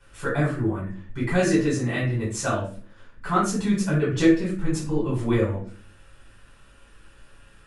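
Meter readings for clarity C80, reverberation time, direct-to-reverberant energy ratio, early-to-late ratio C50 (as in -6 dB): 10.0 dB, no single decay rate, -8.5 dB, 4.5 dB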